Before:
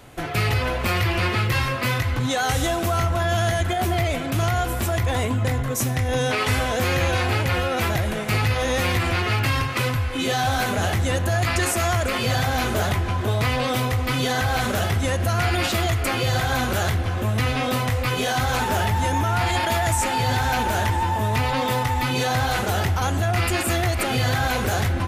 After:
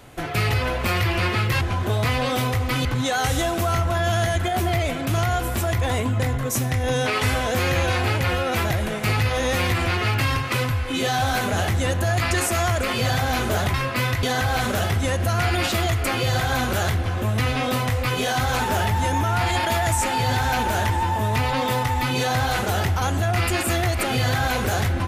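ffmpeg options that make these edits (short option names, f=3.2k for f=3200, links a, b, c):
-filter_complex "[0:a]asplit=5[a][b][c][d][e];[a]atrim=end=1.612[f];[b]atrim=start=12.988:end=14.232[g];[c]atrim=start=2.098:end=12.992[h];[d]atrim=start=1.608:end=2.102[i];[e]atrim=start=14.228[j];[f][g]acrossfade=d=0.004:c1=hsin:c2=hsin[k];[k][h]acrossfade=d=0.004:c1=hsin:c2=hsin[l];[l][i]acrossfade=d=0.004:c1=hsin:c2=hsin[m];[m][j]acrossfade=d=0.004:c1=hsin:c2=hsin"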